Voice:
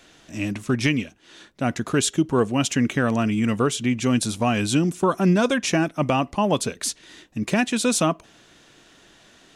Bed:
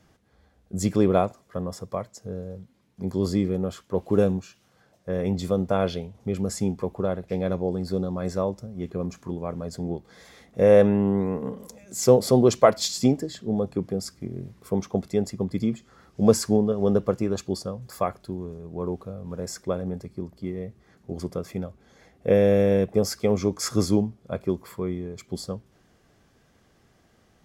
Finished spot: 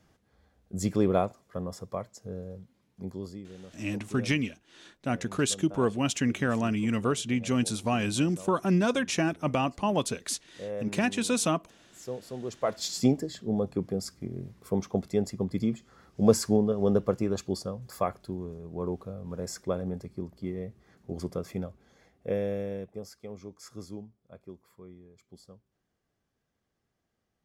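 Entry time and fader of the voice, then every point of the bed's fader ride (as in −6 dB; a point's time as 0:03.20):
3.45 s, −6.0 dB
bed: 0:02.95 −4.5 dB
0:03.42 −20.5 dB
0:12.39 −20.5 dB
0:12.97 −3 dB
0:21.67 −3 dB
0:23.15 −20 dB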